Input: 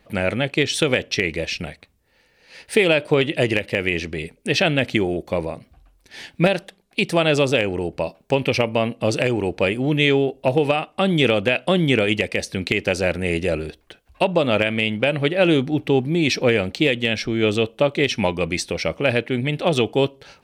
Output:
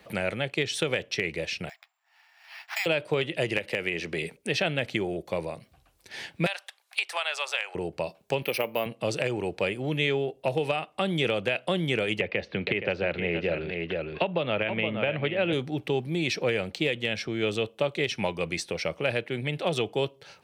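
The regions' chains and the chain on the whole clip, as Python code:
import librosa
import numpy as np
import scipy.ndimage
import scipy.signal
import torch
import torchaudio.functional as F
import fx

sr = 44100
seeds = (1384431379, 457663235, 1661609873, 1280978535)

y = fx.chain(x, sr, fx.resample_bad(factor=6, down='none', up='zero_stuff'),
    fx.brickwall_highpass(low_hz=640.0),
    fx.air_absorb(metres=310.0), at=(1.69, 2.86))
y = fx.chain(y, sr, fx.peak_eq(hz=74.0, db=-6.5, octaves=2.0),
    fx.band_squash(depth_pct=100), at=(3.57, 4.37))
y = fx.chain(y, sr, fx.highpass(hz=840.0, slope=24),
    fx.band_squash(depth_pct=70), at=(6.46, 7.75))
y = fx.chain(y, sr, fx.highpass(hz=230.0, slope=12),
    fx.resample_bad(factor=3, down='filtered', up='hold'), at=(8.42, 8.86))
y = fx.chain(y, sr, fx.lowpass(hz=3300.0, slope=24),
    fx.echo_single(ms=470, db=-9.5),
    fx.band_squash(depth_pct=70), at=(12.2, 15.53))
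y = scipy.signal.sosfilt(scipy.signal.butter(2, 100.0, 'highpass', fs=sr, output='sos'), y)
y = fx.peak_eq(y, sr, hz=260.0, db=-7.5, octaves=0.49)
y = fx.band_squash(y, sr, depth_pct=40)
y = y * librosa.db_to_amplitude(-7.5)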